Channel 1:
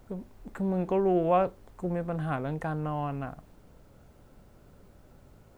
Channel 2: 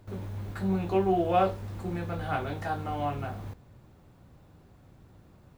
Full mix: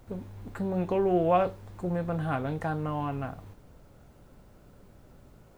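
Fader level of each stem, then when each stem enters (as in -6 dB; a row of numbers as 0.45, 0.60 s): +0.5, -8.5 dB; 0.00, 0.00 s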